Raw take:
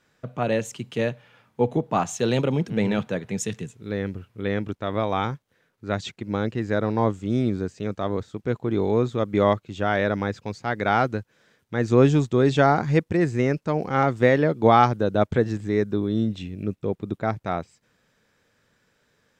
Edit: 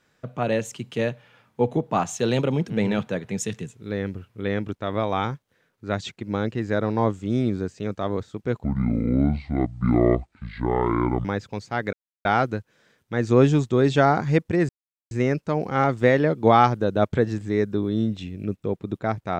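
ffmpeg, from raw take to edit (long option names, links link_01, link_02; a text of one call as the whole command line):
ffmpeg -i in.wav -filter_complex "[0:a]asplit=5[link_01][link_02][link_03][link_04][link_05];[link_01]atrim=end=8.644[link_06];[link_02]atrim=start=8.64:end=10.18,asetpts=PTS-STARTPTS,asetrate=26019,aresample=44100,atrim=end_sample=115108,asetpts=PTS-STARTPTS[link_07];[link_03]atrim=start=10.176:end=10.86,asetpts=PTS-STARTPTS,afade=type=out:start_time=0.68:duration=0.004:curve=hsin,apad=pad_dur=0.32[link_08];[link_04]atrim=start=10.86:end=13.3,asetpts=PTS-STARTPTS,afade=type=in:duration=0.004:curve=hsin,afade=type=out:start_time=2.436:duration=0.004:curve=hsin,apad=pad_dur=0.42[link_09];[link_05]atrim=start=13.3,asetpts=PTS-STARTPTS,afade=type=in:duration=0.004:curve=hsin[link_10];[link_06][link_07]acrossfade=duration=0.004:curve1=hsin:curve2=hsin[link_11];[link_08][link_09][link_10]concat=n=3:v=0:a=1[link_12];[link_11][link_12]acrossfade=duration=0.004:curve1=hsin:curve2=hsin" out.wav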